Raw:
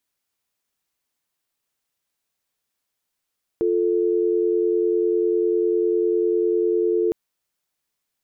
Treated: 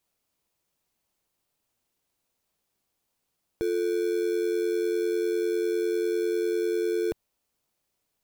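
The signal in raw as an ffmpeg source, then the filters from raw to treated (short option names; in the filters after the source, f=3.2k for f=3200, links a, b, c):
-f lavfi -i "aevalsrc='0.1*(sin(2*PI*350*t)+sin(2*PI*440*t))':d=3.51:s=44100"
-filter_complex "[0:a]equalizer=f=330:t=o:w=2.6:g=-9.5,asplit=2[a][b];[b]acrusher=samples=23:mix=1:aa=0.000001,volume=-7dB[c];[a][c]amix=inputs=2:normalize=0"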